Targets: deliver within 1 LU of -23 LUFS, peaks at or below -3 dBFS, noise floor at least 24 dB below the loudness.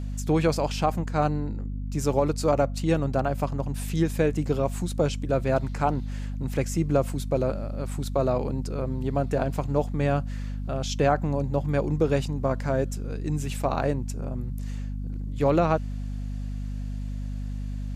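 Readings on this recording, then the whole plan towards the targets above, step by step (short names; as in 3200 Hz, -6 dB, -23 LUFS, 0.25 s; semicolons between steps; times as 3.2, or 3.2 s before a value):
hum 50 Hz; harmonics up to 250 Hz; hum level -29 dBFS; loudness -27.0 LUFS; peak -8.5 dBFS; loudness target -23.0 LUFS
-> de-hum 50 Hz, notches 5; gain +4 dB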